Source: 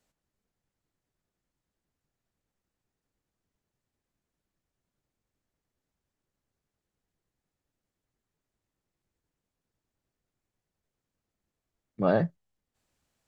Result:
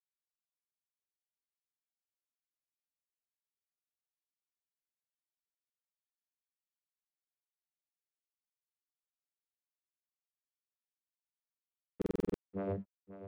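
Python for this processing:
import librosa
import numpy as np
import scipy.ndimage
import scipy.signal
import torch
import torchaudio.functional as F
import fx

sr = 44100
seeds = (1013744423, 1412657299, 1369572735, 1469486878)

p1 = fx.tracing_dist(x, sr, depth_ms=0.38)
p2 = fx.peak_eq(p1, sr, hz=420.0, db=11.5, octaves=0.65)
p3 = fx.vocoder(p2, sr, bands=16, carrier='saw', carrier_hz=97.8)
p4 = np.sign(p3) * np.maximum(np.abs(p3) - 10.0 ** (-51.0 / 20.0), 0.0)
p5 = scipy.signal.sosfilt(scipy.signal.butter(2, 2600.0, 'lowpass', fs=sr, output='sos'), p4)
p6 = p5 + fx.echo_feedback(p5, sr, ms=537, feedback_pct=22, wet_db=-17.5, dry=0)
p7 = fx.buffer_glitch(p6, sr, at_s=(11.97,), block=2048, repeats=7)
y = F.gain(torch.from_numpy(p7), 2.5).numpy()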